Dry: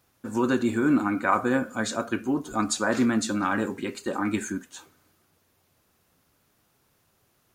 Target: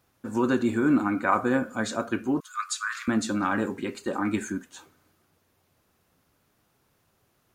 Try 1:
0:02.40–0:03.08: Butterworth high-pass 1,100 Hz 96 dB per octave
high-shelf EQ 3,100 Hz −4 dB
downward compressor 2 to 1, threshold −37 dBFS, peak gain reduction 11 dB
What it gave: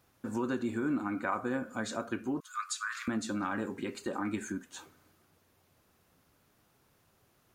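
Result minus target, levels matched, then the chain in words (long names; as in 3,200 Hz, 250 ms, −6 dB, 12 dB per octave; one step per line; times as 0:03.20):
downward compressor: peak gain reduction +11 dB
0:02.40–0:03.08: Butterworth high-pass 1,100 Hz 96 dB per octave
high-shelf EQ 3,100 Hz −4 dB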